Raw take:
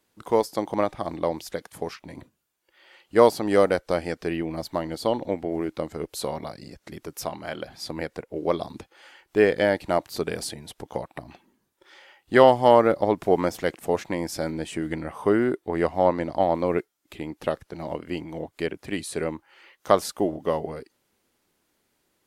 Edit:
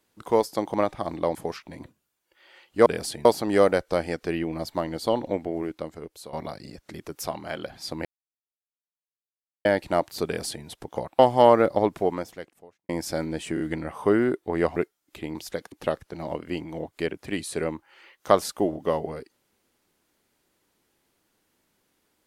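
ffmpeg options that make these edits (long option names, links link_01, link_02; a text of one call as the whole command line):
ffmpeg -i in.wav -filter_complex "[0:a]asplit=14[link_01][link_02][link_03][link_04][link_05][link_06][link_07][link_08][link_09][link_10][link_11][link_12][link_13][link_14];[link_01]atrim=end=1.352[link_15];[link_02]atrim=start=1.718:end=3.232[link_16];[link_03]atrim=start=10.238:end=10.632[link_17];[link_04]atrim=start=3.228:end=6.31,asetpts=PTS-STARTPTS,afade=type=out:start_time=2.092:duration=0.99:silence=0.188365[link_18];[link_05]atrim=start=6.31:end=8.03,asetpts=PTS-STARTPTS,afade=type=in:duration=0.004:curve=hsin:silence=0.188365,afade=type=out:start_time=1.716:duration=0.004:curve=hsin[link_19];[link_06]atrim=start=8.03:end=9.63,asetpts=PTS-STARTPTS,volume=0[link_20];[link_07]atrim=start=9.63:end=11.172,asetpts=PTS-STARTPTS,afade=type=in:duration=0.004:curve=hsin[link_21];[link_08]atrim=start=12.448:end=14.15,asetpts=PTS-STARTPTS,afade=type=out:start_time=0.662:duration=1.04:curve=qua[link_22];[link_09]atrim=start=14.15:end=14.832,asetpts=PTS-STARTPTS,afade=type=in:duration=0.004:curve=hsin[link_23];[link_10]atrim=start=14.798:end=14.832[link_24];[link_11]atrim=start=14.798:end=15.962[link_25];[link_12]atrim=start=16.728:end=17.322[link_26];[link_13]atrim=start=1.348:end=1.722[link_27];[link_14]atrim=start=17.318[link_28];[link_15][link_16]acrossfade=duration=0.004:curve1=hsin:curve2=hsin[link_29];[link_29][link_17]acrossfade=duration=0.004:curve1=hsin:curve2=hsin[link_30];[link_18][link_19][link_20][link_21]concat=n=4:v=0:a=1[link_31];[link_30][link_31]acrossfade=duration=0.004:curve1=hsin:curve2=hsin[link_32];[link_22][link_23]concat=n=2:v=0:a=1[link_33];[link_32][link_33]acrossfade=duration=0.004:curve1=hsin:curve2=hsin[link_34];[link_34][link_24]acrossfade=duration=0.004:curve1=hsin:curve2=hsin[link_35];[link_35][link_25]acrossfade=duration=0.004:curve1=hsin:curve2=hsin[link_36];[link_36][link_26]acrossfade=duration=0.004:curve1=hsin:curve2=hsin[link_37];[link_37][link_27]acrossfade=duration=0.004:curve1=hsin:curve2=hsin[link_38];[link_38][link_28]acrossfade=duration=0.004:curve1=hsin:curve2=hsin" out.wav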